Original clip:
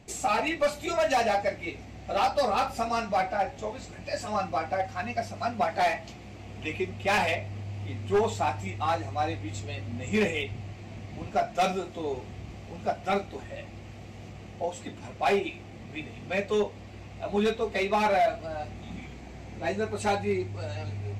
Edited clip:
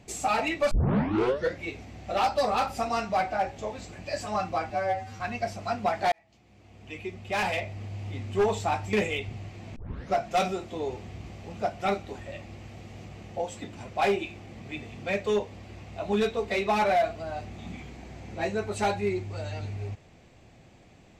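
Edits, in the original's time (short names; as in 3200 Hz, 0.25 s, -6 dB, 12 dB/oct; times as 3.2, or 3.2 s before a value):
0.71 tape start 0.91 s
4.7–4.95 stretch 2×
5.87–7.71 fade in
8.68–10.17 cut
11 tape start 0.38 s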